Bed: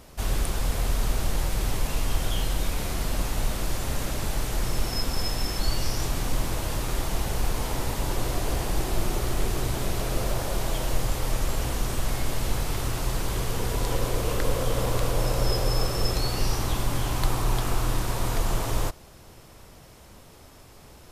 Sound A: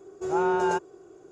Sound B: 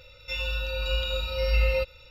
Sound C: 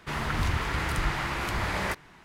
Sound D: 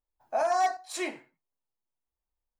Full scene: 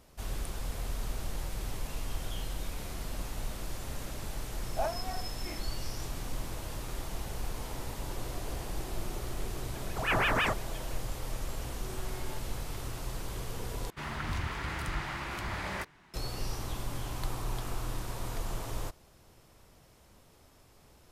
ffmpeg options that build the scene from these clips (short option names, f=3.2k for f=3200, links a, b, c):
-filter_complex "[1:a]asplit=2[a][b];[0:a]volume=-10.5dB[c];[4:a]aeval=exprs='val(0)*pow(10,-18*(0.5-0.5*cos(2*PI*2.6*n/s))/20)':c=same[d];[a]aeval=exprs='val(0)*sin(2*PI*1200*n/s+1200*0.8/5.9*sin(2*PI*5.9*n/s))':c=same[e];[b]asoftclip=type=tanh:threshold=-31.5dB[f];[3:a]bandreject=f=470:w=12[g];[c]asplit=2[h][i];[h]atrim=end=13.904[j];[g]atrim=end=2.24,asetpts=PTS-STARTPTS,volume=-7dB[k];[i]atrim=start=16.136[l];[d]atrim=end=2.59,asetpts=PTS-STARTPTS,volume=-4dB,afade=t=in:d=0.004:c=hsin,afade=t=out:st=2.586:d=0.004:c=hsin,adelay=4440[m];[e]atrim=end=1.31,asetpts=PTS-STARTPTS,volume=-1.5dB,afade=t=in:d=0.004:c=hsin,afade=t=out:st=1.306:d=0.004:c=hsin,adelay=9750[n];[f]atrim=end=1.31,asetpts=PTS-STARTPTS,volume=-15dB,afade=t=in:d=0.004:c=hsin,afade=t=out:st=1.306:d=0.004:c=hsin,adelay=11610[o];[j][k]acrossfade=d=0.004:c1=hsin:c2=hsin[p];[p][l]acrossfade=d=0.004:c1=hsin:c2=hsin[q];[q][m][n][o]amix=inputs=4:normalize=0"